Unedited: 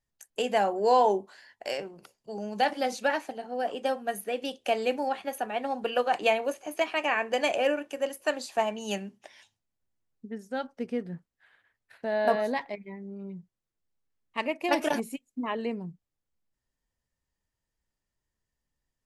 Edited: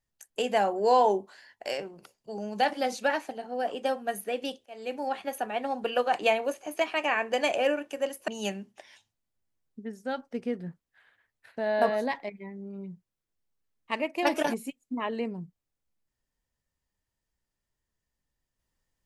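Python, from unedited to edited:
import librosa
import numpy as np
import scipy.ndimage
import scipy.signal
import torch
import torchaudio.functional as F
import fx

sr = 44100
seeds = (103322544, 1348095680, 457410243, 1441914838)

y = fx.edit(x, sr, fx.fade_in_span(start_s=4.66, length_s=0.51),
    fx.cut(start_s=8.28, length_s=0.46), tone=tone)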